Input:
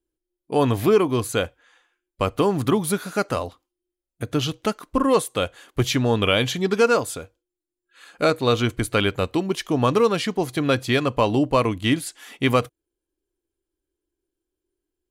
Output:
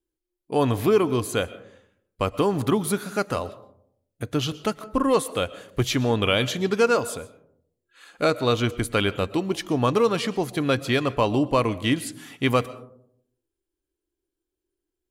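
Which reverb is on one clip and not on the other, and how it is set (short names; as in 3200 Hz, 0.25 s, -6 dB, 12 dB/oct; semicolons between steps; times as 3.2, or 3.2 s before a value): digital reverb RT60 0.7 s, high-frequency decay 0.3×, pre-delay 85 ms, DRR 17 dB; gain -2 dB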